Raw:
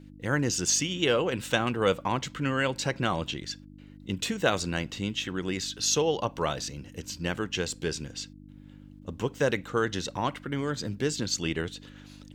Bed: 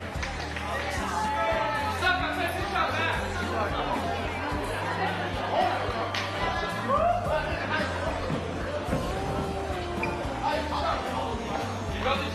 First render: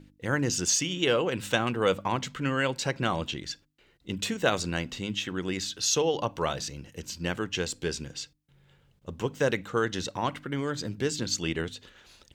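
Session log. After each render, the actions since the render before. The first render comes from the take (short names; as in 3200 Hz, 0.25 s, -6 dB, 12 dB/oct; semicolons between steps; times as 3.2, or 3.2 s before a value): de-hum 50 Hz, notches 6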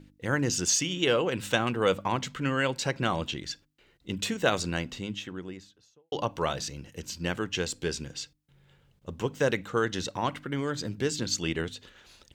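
4.66–6.12 studio fade out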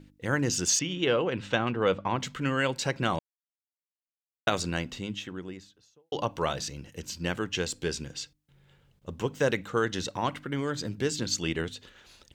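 0.79–2.2 air absorption 150 m; 3.19–4.47 mute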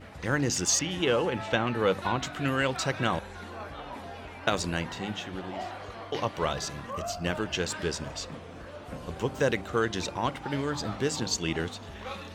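add bed -12 dB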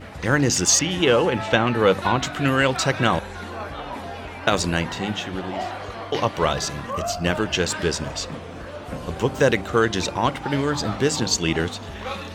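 gain +8 dB; limiter -2 dBFS, peak gain reduction 1.5 dB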